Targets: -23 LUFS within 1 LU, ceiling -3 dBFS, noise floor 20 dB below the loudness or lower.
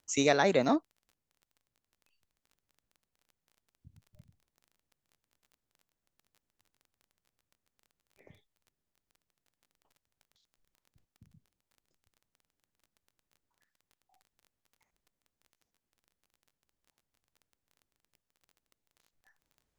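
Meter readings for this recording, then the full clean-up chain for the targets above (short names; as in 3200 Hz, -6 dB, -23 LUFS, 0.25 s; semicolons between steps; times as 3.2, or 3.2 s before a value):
ticks 22/s; loudness -27.5 LUFS; peak -11.0 dBFS; loudness target -23.0 LUFS
-> de-click; gain +4.5 dB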